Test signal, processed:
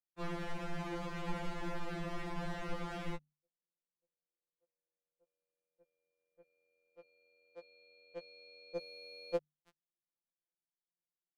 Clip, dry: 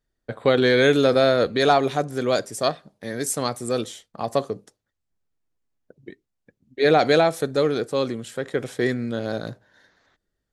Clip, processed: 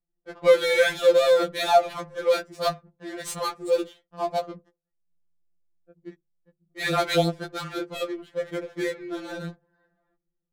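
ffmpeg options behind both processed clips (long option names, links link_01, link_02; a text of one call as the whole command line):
ffmpeg -i in.wav -af "adynamicsmooth=sensitivity=7:basefreq=730,bandreject=frequency=50:width_type=h:width=6,bandreject=frequency=100:width_type=h:width=6,bandreject=frequency=150:width_type=h:width=6,afftfilt=real='re*2.83*eq(mod(b,8),0)':imag='im*2.83*eq(mod(b,8),0)':win_size=2048:overlap=0.75" out.wav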